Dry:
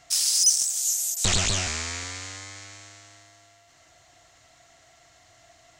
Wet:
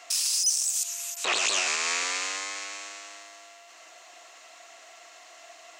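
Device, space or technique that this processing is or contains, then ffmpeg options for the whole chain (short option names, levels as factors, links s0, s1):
laptop speaker: -filter_complex "[0:a]asettb=1/sr,asplit=3[s0][s1][s2];[s0]atrim=end=0.834[s3];[s1]atrim=start=0.83:end=1.36,asetpts=PTS-STARTPTS,afade=t=in:d=0.004:c=qsin,afade=t=out:st=0.526:d=0.004:c=qsin,bass=f=250:g=-4,treble=f=4000:g=-15[s4];[s2]atrim=start=1.356[s5];[s3][s4]acrossfade=d=0.004:c1=hsin:c2=qsin[s6];[s6][s5]acrossfade=d=0.004:c1=qsin:c2=hsin,highpass=f=360:w=0.5412,highpass=f=360:w=1.3066,equalizer=f=1100:t=o:w=0.35:g=5.5,equalizer=f=2600:t=o:w=0.22:g=8,alimiter=limit=0.0841:level=0:latency=1:release=210,volume=2"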